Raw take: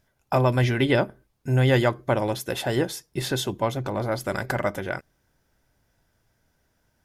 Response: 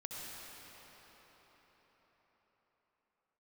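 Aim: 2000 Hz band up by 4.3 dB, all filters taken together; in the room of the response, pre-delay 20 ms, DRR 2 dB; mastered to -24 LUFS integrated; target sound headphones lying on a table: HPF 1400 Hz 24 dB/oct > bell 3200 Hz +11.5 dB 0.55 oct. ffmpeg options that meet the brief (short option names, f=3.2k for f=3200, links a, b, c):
-filter_complex "[0:a]equalizer=f=2k:t=o:g=4,asplit=2[a][b];[1:a]atrim=start_sample=2205,adelay=20[c];[b][c]afir=irnorm=-1:irlink=0,volume=-2dB[d];[a][d]amix=inputs=2:normalize=0,highpass=f=1.4k:w=0.5412,highpass=f=1.4k:w=1.3066,equalizer=f=3.2k:t=o:w=0.55:g=11.5,volume=0.5dB"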